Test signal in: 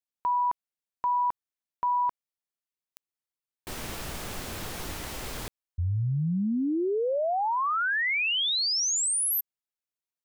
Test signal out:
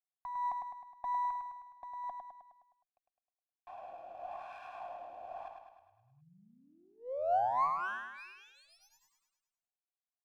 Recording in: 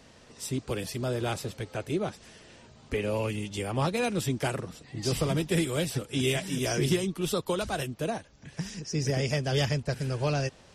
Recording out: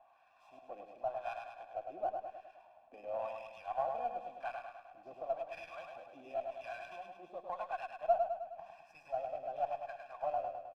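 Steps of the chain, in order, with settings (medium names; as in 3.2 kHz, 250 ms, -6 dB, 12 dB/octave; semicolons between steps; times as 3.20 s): bass shelf 140 Hz -9 dB; comb 1.2 ms, depth 90%; in parallel at -3 dB: gain riding within 4 dB 0.5 s; on the sum: vowel filter a; LFO band-pass sine 0.93 Hz 400–1600 Hz; on a send: feedback delay 104 ms, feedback 55%, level -5 dB; on the sum: sliding maximum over 3 samples; trim -1 dB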